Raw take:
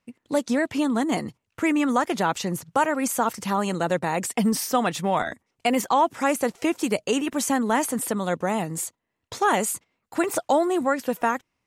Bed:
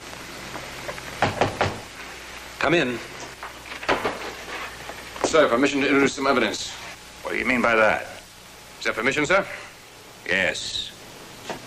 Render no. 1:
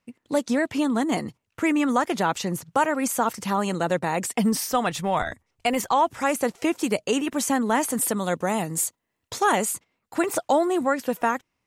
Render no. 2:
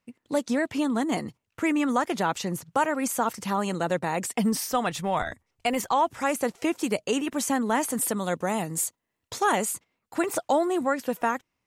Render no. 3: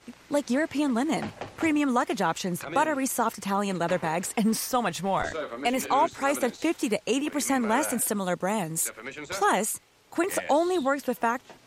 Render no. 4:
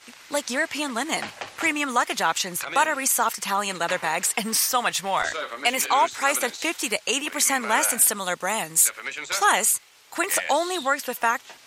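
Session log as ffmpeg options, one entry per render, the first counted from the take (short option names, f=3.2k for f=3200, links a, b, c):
-filter_complex "[0:a]asplit=3[a][b][c];[a]afade=t=out:st=4.62:d=0.02[d];[b]asubboost=boost=5.5:cutoff=92,afade=t=in:st=4.62:d=0.02,afade=t=out:st=6.32:d=0.02[e];[c]afade=t=in:st=6.32:d=0.02[f];[d][e][f]amix=inputs=3:normalize=0,asettb=1/sr,asplit=3[g][h][i];[g]atrim=end=7.904[j];[h]atrim=start=7.9:end=9.52,asetpts=PTS-STARTPTS,afade=t=in:d=0.004:c=qsin,afade=t=out:st=1.616:d=0.004:c=qsin,highshelf=f=5.6k:g=7[k];[i]atrim=start=9.516[l];[j][k]acrossfade=d=0.004:c1=hsin:c2=qsin[m];[m][l]acrossfade=d=0.004:c1=qsin:c2=hsin"
-af "volume=-2.5dB"
-filter_complex "[1:a]volume=-16.5dB[a];[0:a][a]amix=inputs=2:normalize=0"
-af "tiltshelf=f=630:g=-10"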